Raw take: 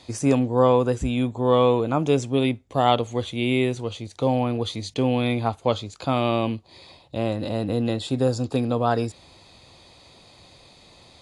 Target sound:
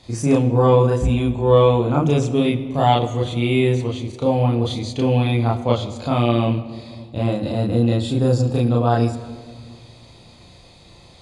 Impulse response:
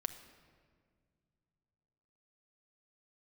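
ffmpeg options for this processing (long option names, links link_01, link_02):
-filter_complex "[0:a]lowshelf=frequency=190:gain=8.5,asplit=2[link_01][link_02];[1:a]atrim=start_sample=2205,adelay=34[link_03];[link_02][link_03]afir=irnorm=-1:irlink=0,volume=2.5dB[link_04];[link_01][link_04]amix=inputs=2:normalize=0,volume=-2.5dB"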